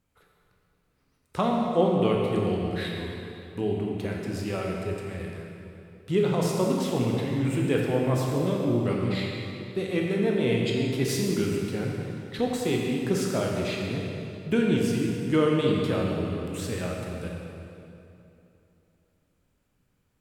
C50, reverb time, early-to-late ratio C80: 0.0 dB, 2.8 s, 1.5 dB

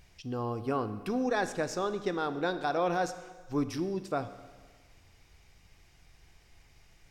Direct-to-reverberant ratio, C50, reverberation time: 10.5 dB, 12.0 dB, 1.5 s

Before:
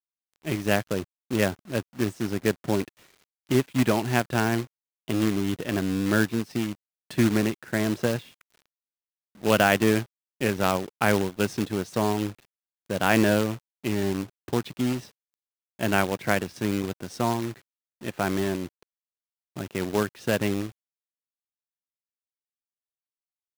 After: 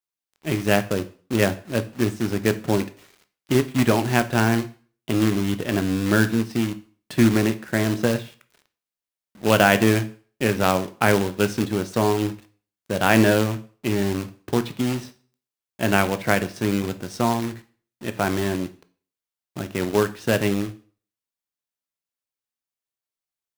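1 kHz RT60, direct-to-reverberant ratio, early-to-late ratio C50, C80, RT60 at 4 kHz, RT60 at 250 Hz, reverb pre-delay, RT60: 0.45 s, 10.5 dB, 16.5 dB, 21.0 dB, 0.40 s, 0.40 s, 5 ms, 0.45 s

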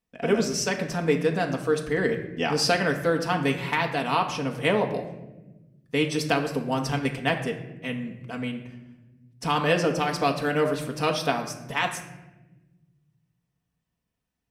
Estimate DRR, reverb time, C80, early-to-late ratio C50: 1.5 dB, 1.1 s, 11.0 dB, 9.0 dB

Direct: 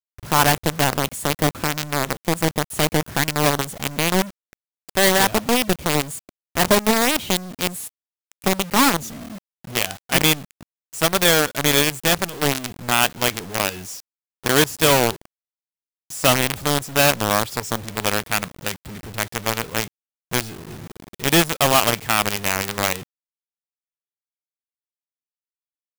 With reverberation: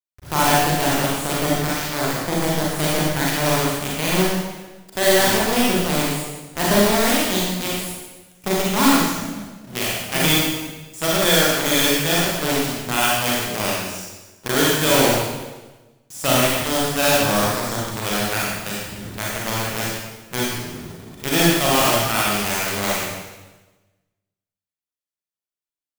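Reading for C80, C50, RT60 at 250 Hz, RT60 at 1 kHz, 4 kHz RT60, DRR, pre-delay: 1.0 dB, −2.0 dB, 1.3 s, 1.1 s, 1.1 s, −5.5 dB, 33 ms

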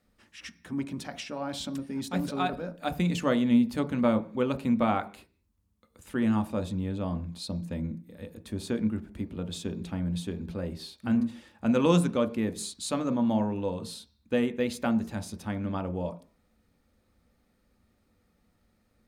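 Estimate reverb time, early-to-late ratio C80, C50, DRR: 0.40 s, 20.5 dB, 16.0 dB, 8.0 dB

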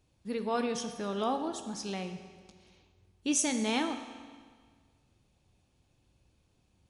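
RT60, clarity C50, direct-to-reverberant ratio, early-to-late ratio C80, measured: 1.7 s, 8.5 dB, 7.0 dB, 10.0 dB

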